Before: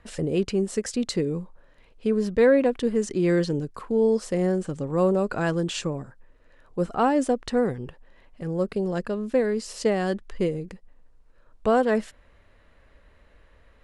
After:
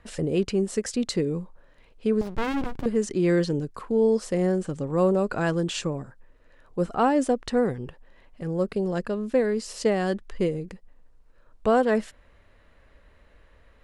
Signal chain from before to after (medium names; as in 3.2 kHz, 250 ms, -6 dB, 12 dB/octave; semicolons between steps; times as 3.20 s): 2.21–2.86 s: sliding maximum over 65 samples